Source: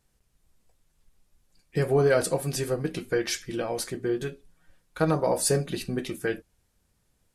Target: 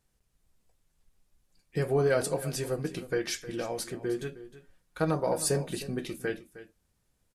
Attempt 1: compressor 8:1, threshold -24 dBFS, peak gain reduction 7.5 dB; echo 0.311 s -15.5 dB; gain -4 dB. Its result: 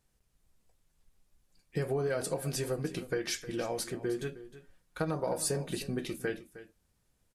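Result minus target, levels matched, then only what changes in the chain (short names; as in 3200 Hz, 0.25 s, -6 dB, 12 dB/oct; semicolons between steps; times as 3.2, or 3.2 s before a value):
compressor: peak gain reduction +7.5 dB
remove: compressor 8:1, threshold -24 dBFS, peak gain reduction 7.5 dB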